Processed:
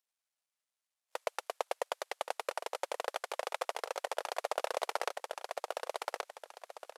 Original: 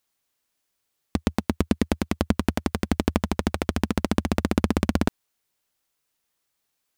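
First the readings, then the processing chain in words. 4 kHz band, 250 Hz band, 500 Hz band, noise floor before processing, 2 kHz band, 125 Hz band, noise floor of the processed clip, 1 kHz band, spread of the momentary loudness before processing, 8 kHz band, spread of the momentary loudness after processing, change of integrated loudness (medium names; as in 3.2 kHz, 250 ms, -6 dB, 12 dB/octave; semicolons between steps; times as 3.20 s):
-6.5 dB, -37.5 dB, -6.5 dB, -77 dBFS, -7.0 dB, under -40 dB, under -85 dBFS, -3.5 dB, 4 LU, -6.5 dB, 7 LU, -12.5 dB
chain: CVSD coder 64 kbps; feedback delay 1126 ms, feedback 24%, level -7 dB; gain riding 2 s; spectral noise reduction 14 dB; steep high-pass 510 Hz 48 dB/octave; trim +1 dB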